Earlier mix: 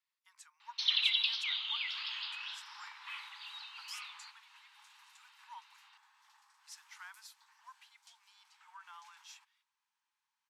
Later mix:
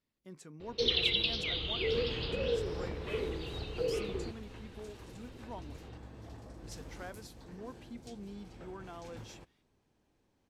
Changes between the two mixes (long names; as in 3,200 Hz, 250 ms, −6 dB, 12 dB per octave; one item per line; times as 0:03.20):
second sound +5.0 dB
master: remove Butterworth high-pass 860 Hz 96 dB per octave